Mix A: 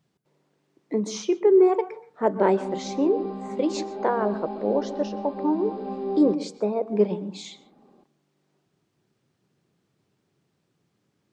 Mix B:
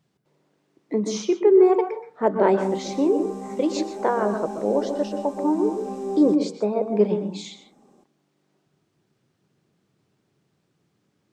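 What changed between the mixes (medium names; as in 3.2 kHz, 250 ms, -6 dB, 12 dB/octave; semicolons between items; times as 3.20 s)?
speech: send +8.5 dB; background: remove brick-wall FIR low-pass 5 kHz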